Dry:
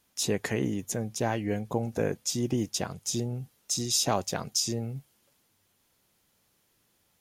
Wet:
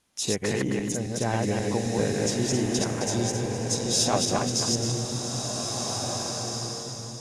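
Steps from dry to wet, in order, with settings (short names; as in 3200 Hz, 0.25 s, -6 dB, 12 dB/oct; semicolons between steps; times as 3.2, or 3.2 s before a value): regenerating reverse delay 0.133 s, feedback 48%, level -1 dB; steep low-pass 11000 Hz 36 dB/oct; bloom reverb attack 1.97 s, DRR 3 dB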